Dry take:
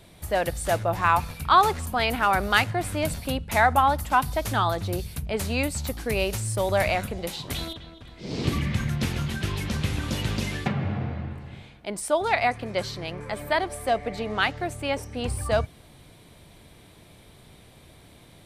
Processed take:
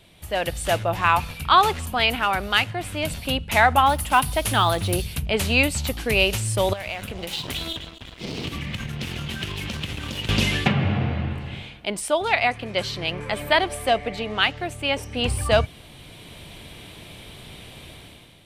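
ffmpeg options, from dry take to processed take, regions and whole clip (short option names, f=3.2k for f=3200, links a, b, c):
-filter_complex "[0:a]asettb=1/sr,asplit=3[a][b][c];[a]atrim=end=3.864[d];[b]atrim=start=3.86:end=5.02,asetpts=PTS-STARTPTS,afade=t=in:d=0.004:c=qsin,afade=t=out:st=1.156:d=0.004:c=qsin,equalizer=f=10k:t=o:w=0.28:g=12,acrusher=bits=7:mode=log:mix=0:aa=0.000001[e];[c]atrim=start=5.016[f];[d][e]acrossfade=d=0.004:c1=hsin:c2=qsin[g];[g][f]acrossfade=d=0.004:c1=qsin:c2=hsin,asettb=1/sr,asplit=3[h][i][j];[h]atrim=end=6.734[k];[i]atrim=start=6.73:end=10.29,asetpts=PTS-STARTPTS,afade=t=in:d=0.004:c=qsin,afade=t=out:st=3.556:d=0.004:c=qsin,acompressor=threshold=-33dB:ratio=10:attack=3.2:release=140:knee=1:detection=peak,aeval=exprs='sgn(val(0))*max(abs(val(0))-0.00422,0)':c=same[l];[j]atrim=start=10.286[m];[k][l]acrossfade=d=0.004:c1=hsin:c2=qsin[n];[n][m]acrossfade=d=0.004:c1=qsin:c2=hsin,equalizer=f=2.9k:t=o:w=0.71:g=9,dynaudnorm=f=140:g=7:m=11.5dB,volume=-3.5dB"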